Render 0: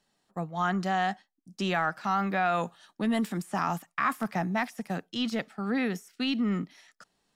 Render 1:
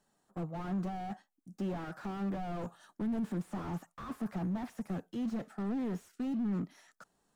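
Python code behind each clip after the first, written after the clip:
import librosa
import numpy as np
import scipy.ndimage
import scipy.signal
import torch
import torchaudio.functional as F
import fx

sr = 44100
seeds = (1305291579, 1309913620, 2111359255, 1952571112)

y = 10.0 ** (-28.0 / 20.0) * np.tanh(x / 10.0 ** (-28.0 / 20.0))
y = fx.band_shelf(y, sr, hz=3200.0, db=-8.0, octaves=1.7)
y = fx.slew_limit(y, sr, full_power_hz=7.2)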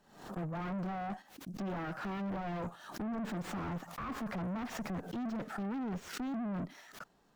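y = scipy.signal.medfilt(x, 5)
y = fx.tube_stage(y, sr, drive_db=43.0, bias=0.25)
y = fx.pre_swell(y, sr, db_per_s=92.0)
y = F.gain(torch.from_numpy(y), 7.5).numpy()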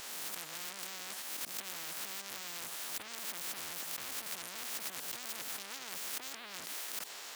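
y = fx.spec_swells(x, sr, rise_s=0.31)
y = scipy.signal.sosfilt(scipy.signal.butter(2, 1500.0, 'highpass', fs=sr, output='sos'), y)
y = fx.spectral_comp(y, sr, ratio=10.0)
y = F.gain(torch.from_numpy(y), 9.0).numpy()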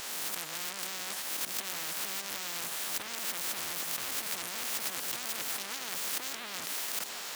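y = fx.echo_swing(x, sr, ms=1236, ratio=1.5, feedback_pct=49, wet_db=-12.0)
y = F.gain(torch.from_numpy(y), 5.5).numpy()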